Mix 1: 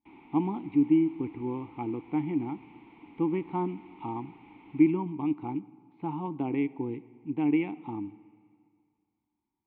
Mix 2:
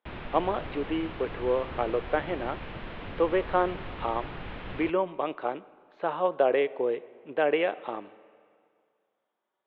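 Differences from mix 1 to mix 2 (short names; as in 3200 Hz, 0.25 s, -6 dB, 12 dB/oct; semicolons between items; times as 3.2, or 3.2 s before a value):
speech: add ladder high-pass 350 Hz, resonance 25%; master: remove vowel filter u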